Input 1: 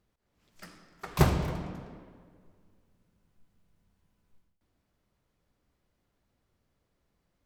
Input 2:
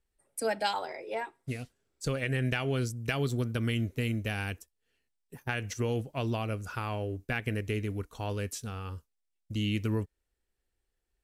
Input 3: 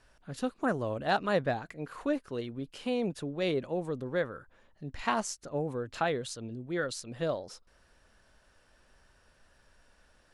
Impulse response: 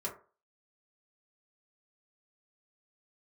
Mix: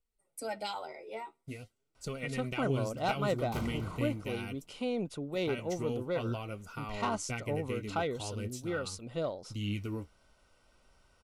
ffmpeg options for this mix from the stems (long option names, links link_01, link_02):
-filter_complex "[0:a]asoftclip=type=tanh:threshold=-21dB,adelay=2350,volume=-10.5dB[link_01];[1:a]flanger=delay=4.2:depth=9.7:regen=39:speed=0.44:shape=sinusoidal,volume=-2.5dB[link_02];[2:a]asoftclip=type=tanh:threshold=-19.5dB,adelay=1950,volume=-2dB[link_03];[link_01][link_02][link_03]amix=inputs=3:normalize=0,asuperstop=centerf=1700:order=12:qfactor=6.1"